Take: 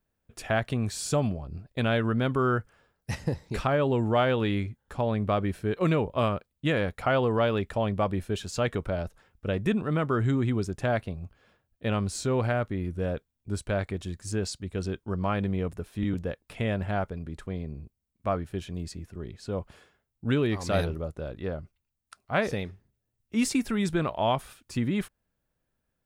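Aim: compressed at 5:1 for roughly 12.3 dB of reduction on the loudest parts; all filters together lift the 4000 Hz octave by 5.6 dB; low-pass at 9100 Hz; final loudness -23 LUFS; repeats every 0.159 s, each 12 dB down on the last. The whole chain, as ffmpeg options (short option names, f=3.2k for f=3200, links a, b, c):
-af "lowpass=9.1k,equalizer=f=4k:t=o:g=7.5,acompressor=threshold=-34dB:ratio=5,aecho=1:1:159|318|477:0.251|0.0628|0.0157,volume=15.5dB"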